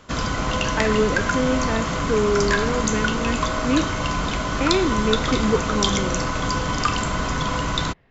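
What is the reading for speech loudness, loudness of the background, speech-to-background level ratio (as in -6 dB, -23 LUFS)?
-24.5 LUFS, -23.5 LUFS, -1.0 dB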